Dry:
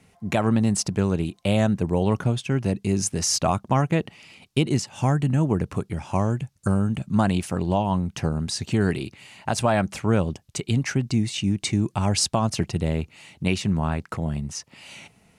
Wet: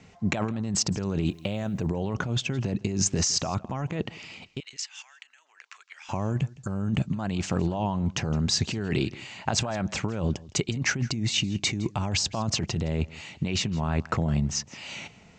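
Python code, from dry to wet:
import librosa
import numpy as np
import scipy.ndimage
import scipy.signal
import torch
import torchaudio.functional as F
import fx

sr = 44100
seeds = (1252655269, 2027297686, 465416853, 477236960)

y = scipy.signal.sosfilt(scipy.signal.butter(12, 7600.0, 'lowpass', fs=sr, output='sos'), x)
y = fx.over_compress(y, sr, threshold_db=-27.0, ratio=-1.0)
y = fx.quant_dither(y, sr, seeds[0], bits=12, dither='triangular', at=(1.25, 1.86), fade=0.02)
y = fx.ladder_highpass(y, sr, hz=1400.0, resonance_pct=25, at=(4.6, 6.09))
y = y + 10.0 ** (-21.0 / 20.0) * np.pad(y, (int(163 * sr / 1000.0), 0))[:len(y)]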